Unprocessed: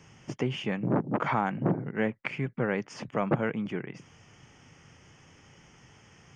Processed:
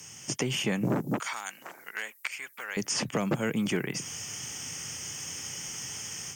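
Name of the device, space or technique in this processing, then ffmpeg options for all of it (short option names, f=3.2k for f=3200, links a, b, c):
FM broadcast chain: -filter_complex "[0:a]highpass=71,dynaudnorm=f=300:g=3:m=9dB,acrossover=split=420|1900|4300[a][b][c][d];[a]acompressor=threshold=-24dB:ratio=4[e];[b]acompressor=threshold=-32dB:ratio=4[f];[c]acompressor=threshold=-46dB:ratio=4[g];[d]acompressor=threshold=-52dB:ratio=4[h];[e][f][g][h]amix=inputs=4:normalize=0,aemphasis=mode=production:type=75fm,alimiter=limit=-17dB:level=0:latency=1:release=311,asoftclip=type=hard:threshold=-18dB,lowpass=f=15k:w=0.5412,lowpass=f=15k:w=1.3066,aemphasis=mode=production:type=75fm,asettb=1/sr,asplit=3[i][j][k];[i]atrim=end=1.204[l];[j]atrim=start=1.2:end=2.77,asetpts=PTS-STARTPTS,afade=t=in:d=0.004:c=qsin,afade=t=out:st=1.566:d=0.004:c=qsin,highpass=1.3k[m];[k]atrim=start=2.766[n];[l][m]acrossfade=d=0.004:c1=hsin:c2=qsin[o];[o][n]acrossfade=d=0.004:c1=qsin:c2=hsin"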